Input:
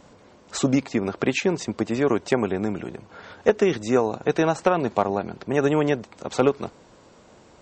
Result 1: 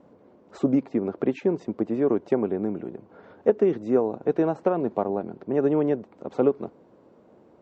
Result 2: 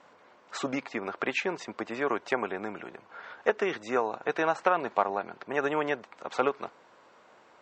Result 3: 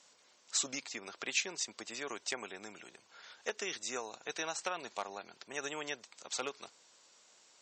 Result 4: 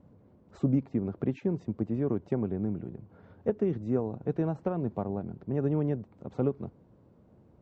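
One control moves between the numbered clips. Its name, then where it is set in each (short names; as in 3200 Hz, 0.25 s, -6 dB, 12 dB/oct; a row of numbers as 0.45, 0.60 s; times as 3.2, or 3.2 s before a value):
band-pass, frequency: 330, 1400, 6600, 110 Hz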